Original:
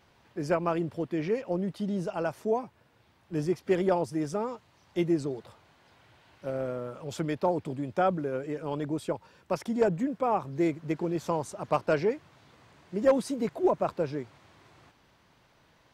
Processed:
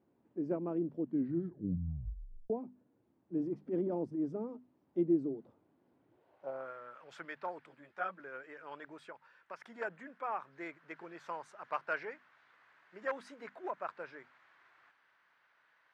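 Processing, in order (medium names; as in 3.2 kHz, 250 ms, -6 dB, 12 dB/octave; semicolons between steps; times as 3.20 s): hum notches 50/100/150/200/250 Hz; 3.37–4.33 s: transient shaper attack -11 dB, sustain +3 dB; 9.00–9.64 s: compression 3:1, threshold -31 dBFS, peak gain reduction 6.5 dB; band-pass sweep 280 Hz -> 1.6 kHz, 6.07–6.75 s; 1.01 s: tape stop 1.49 s; 7.66–8.20 s: three-phase chorus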